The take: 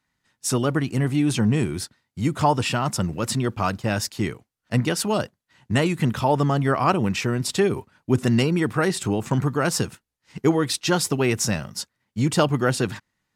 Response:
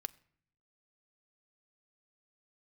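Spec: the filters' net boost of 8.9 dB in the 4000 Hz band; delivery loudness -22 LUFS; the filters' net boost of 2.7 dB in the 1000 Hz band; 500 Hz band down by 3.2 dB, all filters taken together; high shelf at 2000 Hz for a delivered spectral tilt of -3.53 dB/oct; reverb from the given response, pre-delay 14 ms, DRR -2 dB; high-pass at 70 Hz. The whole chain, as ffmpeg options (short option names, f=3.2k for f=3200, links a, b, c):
-filter_complex "[0:a]highpass=70,equalizer=f=500:t=o:g=-5.5,equalizer=f=1k:t=o:g=3.5,highshelf=f=2k:g=4.5,equalizer=f=4k:t=o:g=7,asplit=2[a][b];[1:a]atrim=start_sample=2205,adelay=14[c];[b][c]afir=irnorm=-1:irlink=0,volume=4.5dB[d];[a][d]amix=inputs=2:normalize=0,volume=-5dB"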